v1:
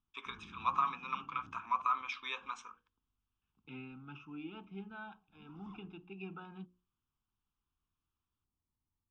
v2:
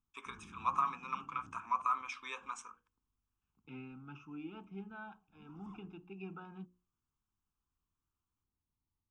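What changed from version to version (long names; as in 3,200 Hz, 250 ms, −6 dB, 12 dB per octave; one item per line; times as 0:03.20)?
master: remove low-pass with resonance 3,900 Hz, resonance Q 2.3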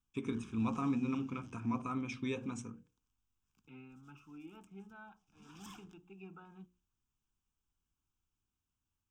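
first voice: remove high-pass with resonance 1,100 Hz, resonance Q 4
second voice −5.5 dB
background: remove Savitzky-Golay smoothing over 65 samples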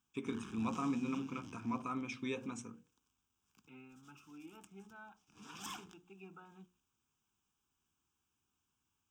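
background +8.5 dB
master: add high-pass filter 240 Hz 6 dB per octave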